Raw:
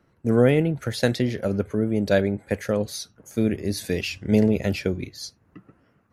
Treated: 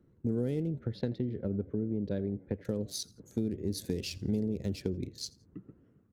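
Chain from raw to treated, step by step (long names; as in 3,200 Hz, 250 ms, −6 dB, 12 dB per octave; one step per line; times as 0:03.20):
adaptive Wiener filter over 9 samples
flat-topped bell 1,300 Hz −13.5 dB 2.6 octaves
downward compressor 4 to 1, threshold −30 dBFS, peak gain reduction 14 dB
0:00.79–0:02.65: high-frequency loss of the air 370 metres
on a send: echo with shifted repeats 84 ms, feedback 33%, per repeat +78 Hz, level −24 dB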